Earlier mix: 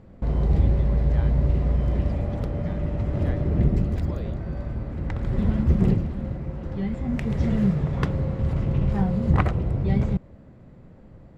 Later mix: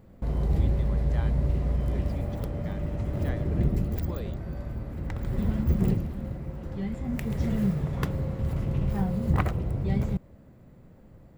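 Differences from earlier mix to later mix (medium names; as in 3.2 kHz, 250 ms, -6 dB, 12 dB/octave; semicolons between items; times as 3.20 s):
background -4.5 dB; master: remove distance through air 83 m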